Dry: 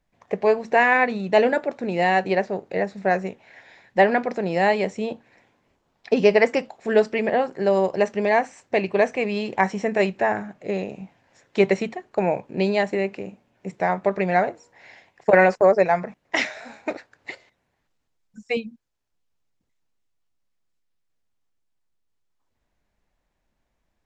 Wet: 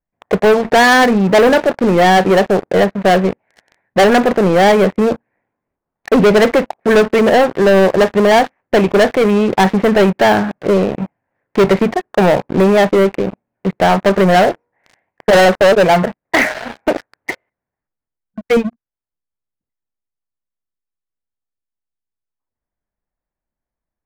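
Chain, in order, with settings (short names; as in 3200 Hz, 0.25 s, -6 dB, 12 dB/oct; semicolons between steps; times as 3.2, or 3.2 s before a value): LPF 2000 Hz 24 dB/oct; sample leveller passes 5; gain -1.5 dB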